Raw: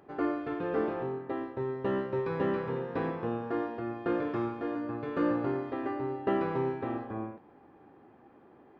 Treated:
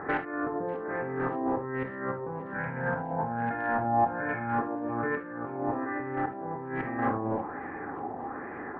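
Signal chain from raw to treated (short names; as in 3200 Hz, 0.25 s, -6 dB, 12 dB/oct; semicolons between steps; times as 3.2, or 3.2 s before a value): resonant high shelf 2600 Hz -11.5 dB, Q 3; 2.52–4.59 comb 1.3 ms, depth 71%; dynamic EQ 170 Hz, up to +5 dB, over -45 dBFS, Q 0.79; negative-ratio compressor -41 dBFS, ratio -1; overloaded stage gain 32 dB; LFO low-pass sine 1.2 Hz 780–2300 Hz; thin delay 0.591 s, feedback 72%, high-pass 3200 Hz, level -13 dB; non-linear reverb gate 90 ms flat, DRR 6.5 dB; gain +6 dB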